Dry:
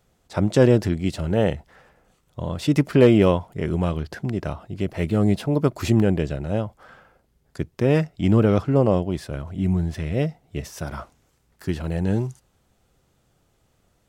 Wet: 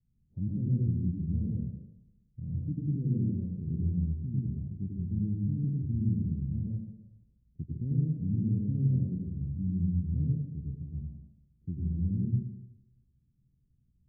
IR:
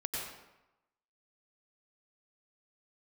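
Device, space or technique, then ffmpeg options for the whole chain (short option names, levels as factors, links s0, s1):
club heard from the street: -filter_complex "[0:a]alimiter=limit=0.251:level=0:latency=1,lowpass=f=210:w=0.5412,lowpass=f=210:w=1.3066[s0];[1:a]atrim=start_sample=2205[s1];[s0][s1]afir=irnorm=-1:irlink=0,asettb=1/sr,asplit=3[s2][s3][s4];[s2]atrim=end=4.934[s5];[s3]atrim=start=4.93:end=6.66,asetpts=PTS-STARTPTS,afade=t=in:d=0.004:c=qsin,afade=t=out:st=1.726:d=0.004:c=qsin,equalizer=f=490:w=1.7:g=-6[s6];[s4]atrim=start=6.656[s7];[s5][s6]acrossfade=d=0.004:c1=hsin:c2=qsin[s8];[s8][s7]acrossfade=d=0.004:c1=qsin:c2=hsin,volume=0.473"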